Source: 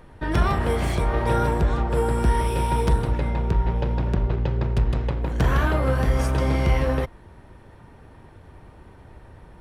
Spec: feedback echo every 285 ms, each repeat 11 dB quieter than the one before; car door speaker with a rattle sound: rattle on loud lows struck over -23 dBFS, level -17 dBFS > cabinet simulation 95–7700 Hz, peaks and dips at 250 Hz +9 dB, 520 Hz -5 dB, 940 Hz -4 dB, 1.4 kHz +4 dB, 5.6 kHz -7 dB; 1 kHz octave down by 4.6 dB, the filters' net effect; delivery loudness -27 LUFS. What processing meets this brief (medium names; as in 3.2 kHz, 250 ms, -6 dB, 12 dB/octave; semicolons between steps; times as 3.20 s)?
peaking EQ 1 kHz -4 dB; feedback delay 285 ms, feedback 28%, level -11 dB; rattle on loud lows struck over -23 dBFS, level -17 dBFS; cabinet simulation 95–7700 Hz, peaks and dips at 250 Hz +9 dB, 520 Hz -5 dB, 940 Hz -4 dB, 1.4 kHz +4 dB, 5.6 kHz -7 dB; trim -2.5 dB